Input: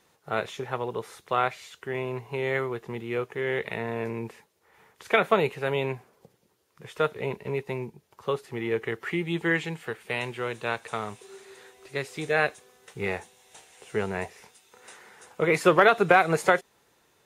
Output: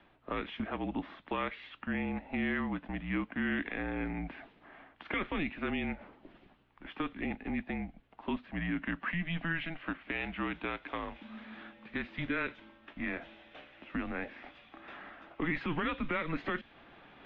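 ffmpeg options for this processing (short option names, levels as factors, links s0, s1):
-filter_complex "[0:a]asubboost=boost=8.5:cutoff=74,acrossover=split=390|1900[s0][s1][s2];[s1]acompressor=threshold=0.0158:ratio=6[s3];[s0][s3][s2]amix=inputs=3:normalize=0,alimiter=limit=0.0668:level=0:latency=1:release=12,areverse,acompressor=mode=upward:threshold=0.00891:ratio=2.5,areverse,aeval=exprs='val(0)+0.000708*(sin(2*PI*60*n/s)+sin(2*PI*2*60*n/s)/2+sin(2*PI*3*60*n/s)/3+sin(2*PI*4*60*n/s)/4+sin(2*PI*5*60*n/s)/5)':c=same,highpass=f=200:t=q:w=0.5412,highpass=f=200:t=q:w=1.307,lowpass=f=3400:t=q:w=0.5176,lowpass=f=3400:t=q:w=0.7071,lowpass=f=3400:t=q:w=1.932,afreqshift=-170"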